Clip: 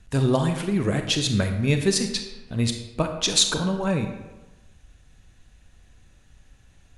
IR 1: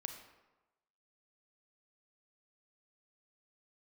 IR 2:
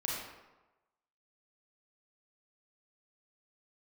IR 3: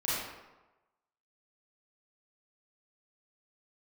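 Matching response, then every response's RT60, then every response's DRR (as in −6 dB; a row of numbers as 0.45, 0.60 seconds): 1; 1.1, 1.1, 1.1 seconds; 5.5, −4.5, −10.0 decibels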